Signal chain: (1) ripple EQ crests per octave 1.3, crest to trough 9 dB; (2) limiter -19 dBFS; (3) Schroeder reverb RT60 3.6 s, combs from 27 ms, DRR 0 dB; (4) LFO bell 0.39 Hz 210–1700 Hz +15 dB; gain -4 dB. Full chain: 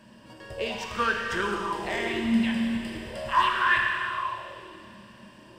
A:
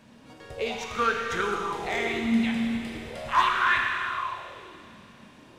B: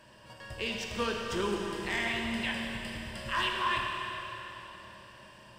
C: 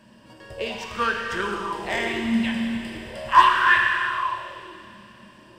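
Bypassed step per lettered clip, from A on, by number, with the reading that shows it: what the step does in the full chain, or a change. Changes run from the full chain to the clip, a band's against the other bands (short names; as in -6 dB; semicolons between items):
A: 1, 8 kHz band +2.0 dB; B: 4, 250 Hz band -6.5 dB; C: 2, crest factor change +4.5 dB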